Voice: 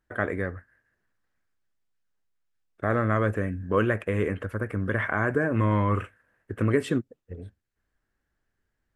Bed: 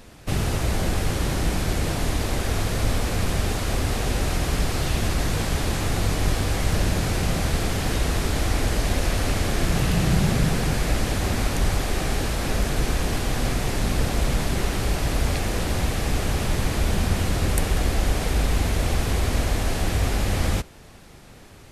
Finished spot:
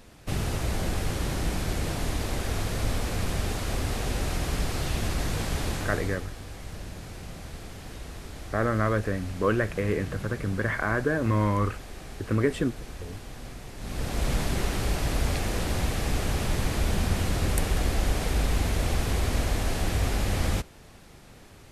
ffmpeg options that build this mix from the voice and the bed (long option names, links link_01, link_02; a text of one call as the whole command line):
ffmpeg -i stem1.wav -i stem2.wav -filter_complex "[0:a]adelay=5700,volume=-1dB[link_01];[1:a]volume=8.5dB,afade=type=out:start_time=5.68:duration=0.59:silence=0.251189,afade=type=in:start_time=13.77:duration=0.55:silence=0.211349[link_02];[link_01][link_02]amix=inputs=2:normalize=0" out.wav